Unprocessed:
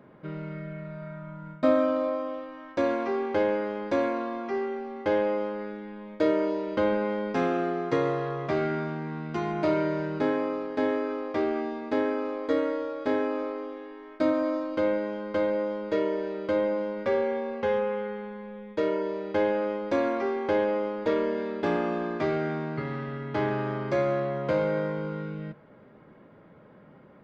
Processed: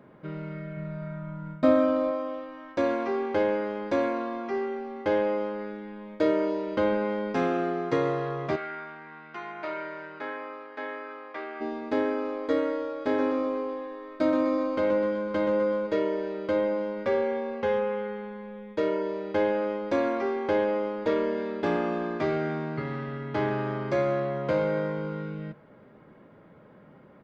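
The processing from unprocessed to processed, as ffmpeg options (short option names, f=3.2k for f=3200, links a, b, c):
-filter_complex "[0:a]asettb=1/sr,asplit=3[a][b][c];[a]atrim=end=0.774[d];[b]atrim=start=0.77:end=2.11,asetpts=PTS-STARTPTS,afade=t=in:d=0.004:c=qsin,afade=t=out:st=1.336:d=0.004:c=qsin,lowshelf=f=220:g=6.5[e];[c]atrim=start=2.106[f];[d][e]acrossfade=d=0.004:c1=hsin:c2=qsin[g];[g][f]acrossfade=d=0.004:c1=qsin:c2=hsin,asplit=3[h][i][j];[h]afade=t=out:st=8.55:d=0.02[k];[i]bandpass=f=1.7k:t=q:w=1.1,afade=t=in:st=8.55:d=0.02,afade=t=out:st=11.6:d=0.02[l];[j]afade=t=in:st=11.6:d=0.02[m];[k][l][m]amix=inputs=3:normalize=0,asplit=3[n][o][p];[n]afade=t=out:st=13.17:d=0.02[q];[o]aecho=1:1:126|252|378|504|630|756|882:0.501|0.271|0.146|0.0789|0.0426|0.023|0.0124,afade=t=in:st=13.17:d=0.02,afade=t=out:st=15.86:d=0.02[r];[p]afade=t=in:st=15.86:d=0.02[s];[q][r][s]amix=inputs=3:normalize=0"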